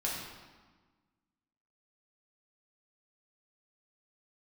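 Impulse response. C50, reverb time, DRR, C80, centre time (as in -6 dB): 0.5 dB, 1.4 s, -5.0 dB, 3.0 dB, 74 ms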